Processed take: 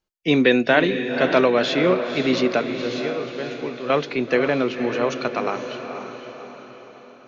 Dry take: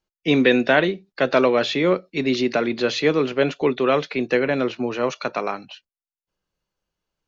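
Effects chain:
0:02.61–0:03.90: tuned comb filter 120 Hz, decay 0.53 s, harmonics all, mix 80%
feedback delay with all-pass diffusion 516 ms, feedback 50%, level −8 dB

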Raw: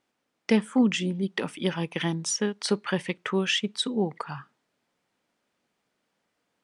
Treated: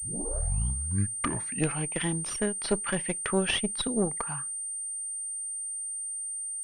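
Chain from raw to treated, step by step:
turntable start at the beginning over 1.97 s
harmonic generator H 4 −14 dB, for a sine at −10 dBFS
switching amplifier with a slow clock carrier 8,800 Hz
level −1.5 dB

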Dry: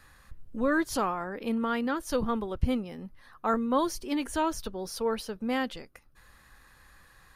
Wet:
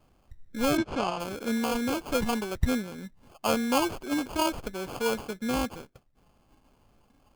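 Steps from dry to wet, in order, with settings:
noise reduction from a noise print of the clip's start 8 dB
sample-rate reduction 1,900 Hz, jitter 0%
0:00.77–0:01.20: high-frequency loss of the air 110 metres
level +1 dB

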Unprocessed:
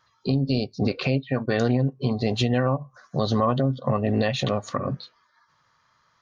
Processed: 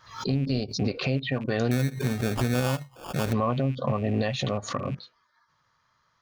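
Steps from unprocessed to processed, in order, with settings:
loose part that buzzes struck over −31 dBFS, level −33 dBFS
low-shelf EQ 94 Hz +5.5 dB
0:01.71–0:03.33: sample-rate reduction 2,000 Hz, jitter 0%
background raised ahead of every attack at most 120 dB per second
level −4.5 dB

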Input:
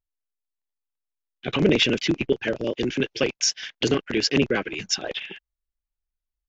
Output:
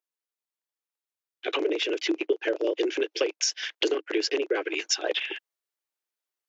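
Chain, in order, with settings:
dynamic equaliser 450 Hz, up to +6 dB, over −32 dBFS, Q 0.9
downward compressor 6 to 1, threshold −24 dBFS, peak gain reduction 14.5 dB
Chebyshev high-pass filter 310 Hz, order 6
speech leveller 0.5 s
level +3 dB

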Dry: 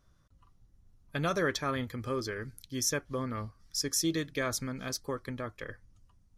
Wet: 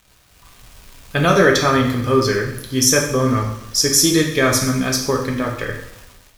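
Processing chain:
surface crackle 430 per second −46 dBFS
coupled-rooms reverb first 0.69 s, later 1.8 s, DRR 0 dB
automatic gain control gain up to 10 dB
level +4 dB

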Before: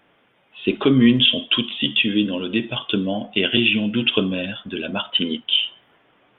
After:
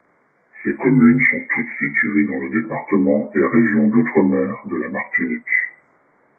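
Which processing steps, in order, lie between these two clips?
partials spread apart or drawn together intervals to 83%
0:02.64–0:04.82: octave-band graphic EQ 250/500/1,000/2,000 Hz +4/+6/+10/−10 dB
level +3 dB

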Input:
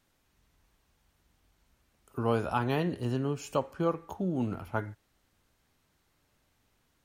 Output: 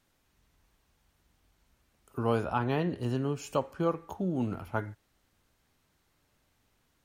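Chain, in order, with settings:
0:02.43–0:03.00: high-shelf EQ 4,500 Hz → 7,100 Hz −11.5 dB

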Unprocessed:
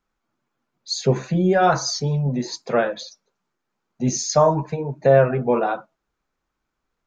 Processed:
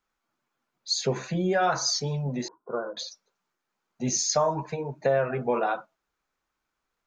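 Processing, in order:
low-shelf EQ 480 Hz −9 dB
downward compressor 3 to 1, threshold −21 dBFS, peak gain reduction 6.5 dB
0:02.48–0:02.97: Chebyshev low-pass with heavy ripple 1,500 Hz, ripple 9 dB

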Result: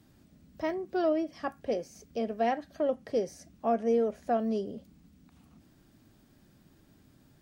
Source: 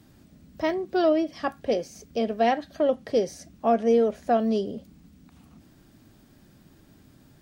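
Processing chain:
dynamic equaliser 3,700 Hz, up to −7 dB, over −52 dBFS, Q 1.8
level −6 dB

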